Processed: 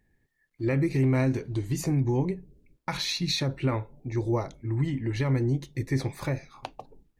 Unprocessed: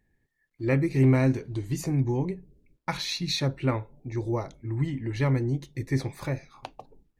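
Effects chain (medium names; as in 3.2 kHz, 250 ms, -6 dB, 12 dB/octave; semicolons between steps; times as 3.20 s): peak limiter -19.5 dBFS, peak gain reduction 7.5 dB; trim +2 dB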